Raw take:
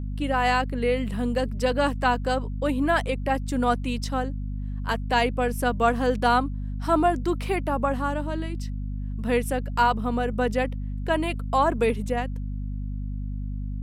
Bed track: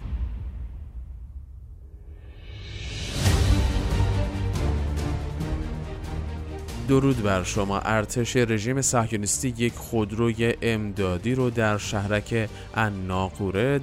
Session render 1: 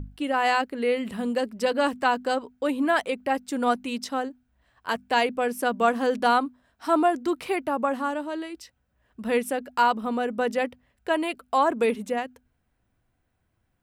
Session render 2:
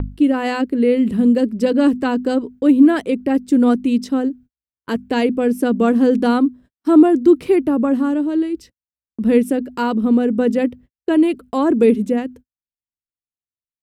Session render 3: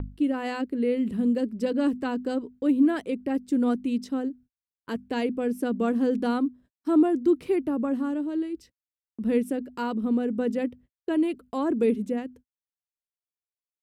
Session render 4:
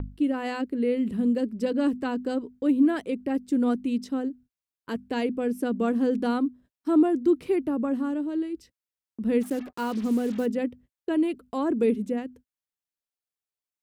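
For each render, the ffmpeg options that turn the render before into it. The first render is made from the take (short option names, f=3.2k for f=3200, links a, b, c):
-af "bandreject=f=50:t=h:w=6,bandreject=f=100:t=h:w=6,bandreject=f=150:t=h:w=6,bandreject=f=200:t=h:w=6,bandreject=f=250:t=h:w=6"
-af "lowshelf=f=510:t=q:w=1.5:g=13,agate=range=-49dB:threshold=-38dB:ratio=16:detection=peak"
-af "volume=-10dB"
-filter_complex "[0:a]asplit=3[a][b][c];[a]afade=t=out:st=9.4:d=0.02[d];[b]acrusher=bits=6:mix=0:aa=0.5,afade=t=in:st=9.4:d=0.02,afade=t=out:st=10.45:d=0.02[e];[c]afade=t=in:st=10.45:d=0.02[f];[d][e][f]amix=inputs=3:normalize=0"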